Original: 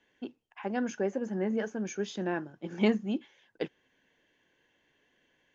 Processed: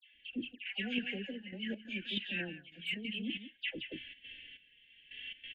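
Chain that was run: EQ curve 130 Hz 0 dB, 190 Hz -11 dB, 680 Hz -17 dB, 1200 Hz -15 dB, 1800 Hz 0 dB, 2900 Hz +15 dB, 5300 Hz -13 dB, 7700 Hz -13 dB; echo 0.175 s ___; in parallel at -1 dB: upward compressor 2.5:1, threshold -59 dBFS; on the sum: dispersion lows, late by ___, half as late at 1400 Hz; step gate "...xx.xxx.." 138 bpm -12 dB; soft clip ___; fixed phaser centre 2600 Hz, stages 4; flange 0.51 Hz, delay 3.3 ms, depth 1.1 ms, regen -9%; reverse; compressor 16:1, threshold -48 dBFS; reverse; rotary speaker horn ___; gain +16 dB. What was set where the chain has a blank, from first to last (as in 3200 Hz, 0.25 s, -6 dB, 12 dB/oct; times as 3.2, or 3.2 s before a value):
-13 dB, 0.143 s, -17 dBFS, 0.7 Hz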